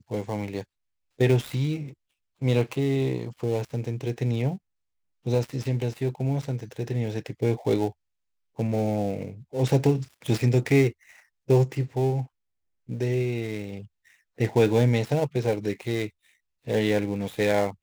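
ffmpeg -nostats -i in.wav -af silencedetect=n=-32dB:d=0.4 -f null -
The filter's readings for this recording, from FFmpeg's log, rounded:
silence_start: 0.61
silence_end: 1.20 | silence_duration: 0.59
silence_start: 1.88
silence_end: 2.42 | silence_duration: 0.54
silence_start: 4.56
silence_end: 5.26 | silence_duration: 0.71
silence_start: 7.90
silence_end: 8.59 | silence_duration: 0.69
silence_start: 10.90
silence_end: 11.50 | silence_duration: 0.59
silence_start: 12.24
silence_end: 12.89 | silence_duration: 0.65
silence_start: 13.80
silence_end: 14.40 | silence_duration: 0.60
silence_start: 16.06
silence_end: 16.67 | silence_duration: 0.61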